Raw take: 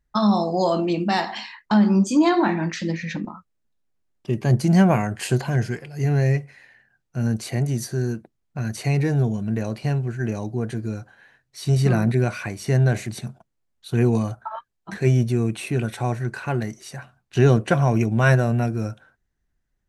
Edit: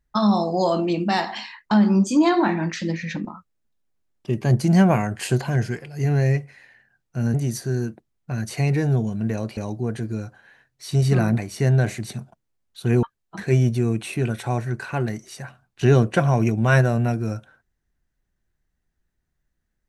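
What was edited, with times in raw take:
7.34–7.61 s: delete
9.84–10.31 s: delete
12.12–12.46 s: delete
14.11–14.57 s: delete

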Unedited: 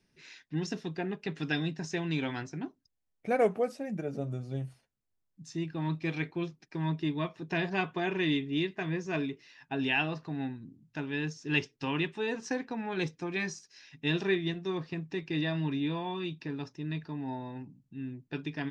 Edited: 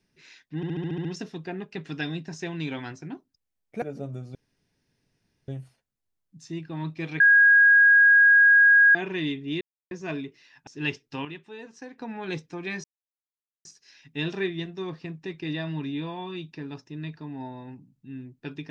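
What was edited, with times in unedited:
0.56 s: stutter 0.07 s, 8 plays
3.33–4.00 s: delete
4.53 s: insert room tone 1.13 s
6.25–8.00 s: bleep 1.64 kHz -12.5 dBFS
8.66–8.96 s: mute
9.72–11.36 s: delete
11.94–12.67 s: gain -9 dB
13.53 s: insert silence 0.81 s

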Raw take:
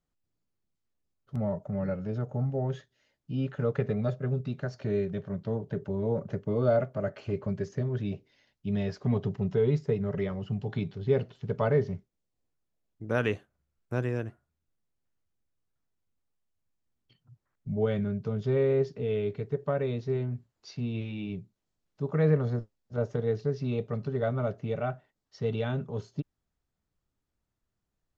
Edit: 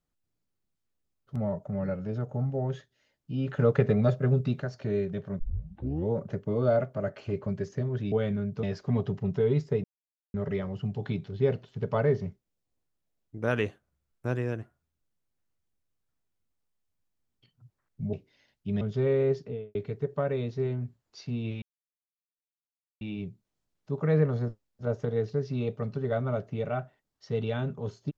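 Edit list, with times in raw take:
3.47–4.62 s: gain +5.5 dB
5.39 s: tape start 0.72 s
8.12–8.80 s: swap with 17.80–18.31 s
10.01 s: insert silence 0.50 s
18.90–19.25 s: studio fade out
21.12 s: insert silence 1.39 s

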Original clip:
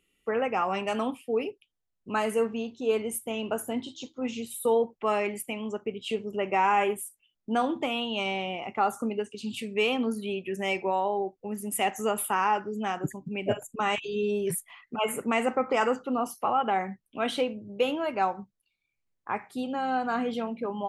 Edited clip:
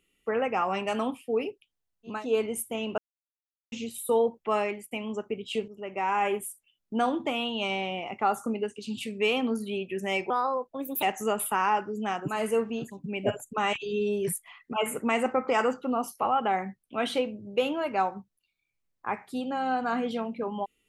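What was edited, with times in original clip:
2.15–2.71 s: move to 13.10 s, crossfade 0.24 s
3.54–4.28 s: mute
5.07–5.47 s: fade out equal-power, to -19.5 dB
6.24–7.03 s: fade in, from -13 dB
10.86–11.81 s: speed 131%

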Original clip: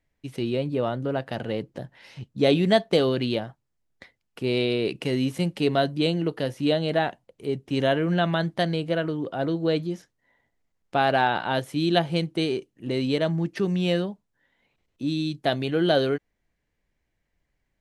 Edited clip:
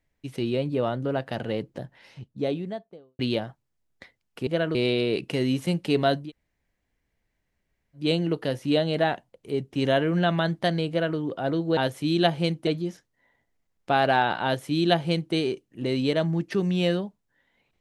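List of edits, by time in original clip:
1.65–3.19 s: studio fade out
5.96 s: insert room tone 1.77 s, crossfade 0.16 s
8.84–9.12 s: copy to 4.47 s
11.49–12.39 s: copy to 9.72 s

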